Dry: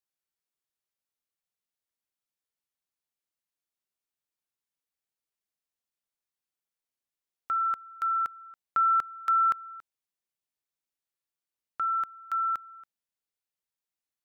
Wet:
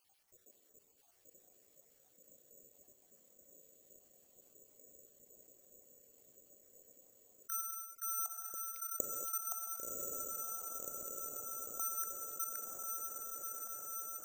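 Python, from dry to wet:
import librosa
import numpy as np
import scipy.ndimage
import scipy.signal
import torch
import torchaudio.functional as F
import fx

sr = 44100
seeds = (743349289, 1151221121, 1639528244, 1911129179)

y = fx.spec_dropout(x, sr, seeds[0], share_pct=74)
y = fx.lowpass(y, sr, hz=fx.line((7.52, 1500.0), (8.16, 1200.0)), slope=12, at=(7.52, 8.16), fade=0.02)
y = fx.noise_reduce_blind(y, sr, reduce_db=8)
y = fx.curve_eq(y, sr, hz=(180.0, 570.0, 990.0), db=(0, 12, -23))
y = fx.echo_diffused(y, sr, ms=1079, feedback_pct=68, wet_db=-6.5)
y = fx.rev_gated(y, sr, seeds[1], gate_ms=260, shape='flat', drr_db=10.5)
y = (np.kron(y[::6], np.eye(6)[0]) * 6)[:len(y)]
y = fx.env_flatten(y, sr, amount_pct=50)
y = y * 10.0 ** (3.5 / 20.0)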